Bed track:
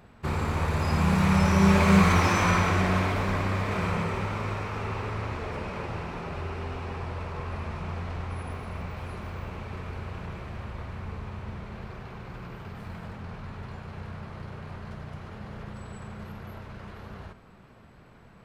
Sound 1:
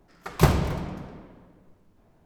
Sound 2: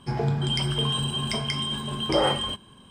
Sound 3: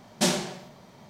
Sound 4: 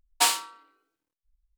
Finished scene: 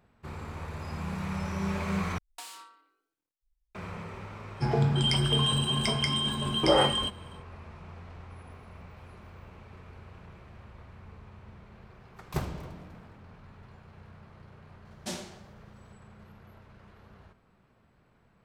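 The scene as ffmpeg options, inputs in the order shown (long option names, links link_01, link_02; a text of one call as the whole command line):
ffmpeg -i bed.wav -i cue0.wav -i cue1.wav -i cue2.wav -i cue3.wav -filter_complex "[0:a]volume=-12dB[link_01];[4:a]acompressor=threshold=-35dB:ratio=6:attack=3.2:release=140:knee=1:detection=peak[link_02];[link_01]asplit=2[link_03][link_04];[link_03]atrim=end=2.184[link_05];[link_02]atrim=end=1.57,asetpts=PTS-STARTPTS,volume=-6dB[link_06];[link_04]atrim=start=3.746[link_07];[2:a]atrim=end=2.9,asetpts=PTS-STARTPTS,afade=type=in:duration=0.1,afade=type=out:start_time=2.8:duration=0.1,adelay=4540[link_08];[1:a]atrim=end=2.25,asetpts=PTS-STARTPTS,volume=-13.5dB,afade=type=in:duration=0.004:curve=hsin,afade=type=out:start_time=2.246:duration=0.004:curve=hsin,adelay=11930[link_09];[3:a]atrim=end=1.09,asetpts=PTS-STARTPTS,volume=-13.5dB,afade=type=in:duration=0.004:curve=hsin,afade=type=out:start_time=1.086:duration=0.004:curve=hsin,adelay=14850[link_10];[link_05][link_06]acrossfade=duration=0.004:curve1=hsin:curve2=hsin[link_11];[link_11][link_07]acrossfade=duration=0.004:curve1=hsin:curve2=hsin[link_12];[link_12][link_08][link_09][link_10]amix=inputs=4:normalize=0" out.wav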